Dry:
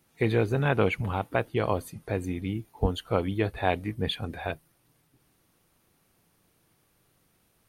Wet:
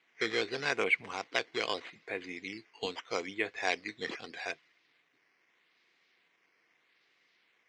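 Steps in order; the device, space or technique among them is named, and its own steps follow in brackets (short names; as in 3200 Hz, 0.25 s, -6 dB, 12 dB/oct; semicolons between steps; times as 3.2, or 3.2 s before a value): circuit-bent sampling toy (decimation with a swept rate 8×, swing 100% 0.8 Hz; speaker cabinet 560–5300 Hz, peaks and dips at 590 Hz -9 dB, 860 Hz -9 dB, 1300 Hz -6 dB, 2100 Hz +8 dB)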